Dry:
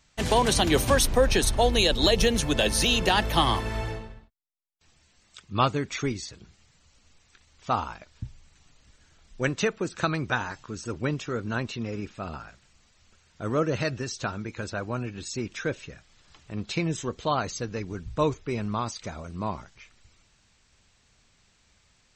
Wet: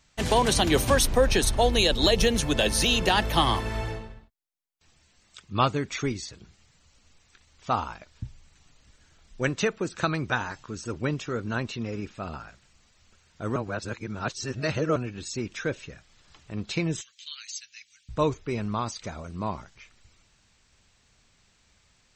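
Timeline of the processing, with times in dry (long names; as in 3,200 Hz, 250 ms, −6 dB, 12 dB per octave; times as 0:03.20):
0:13.56–0:14.96: reverse
0:17.01–0:18.09: inverse Chebyshev high-pass filter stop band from 920 Hz, stop band 50 dB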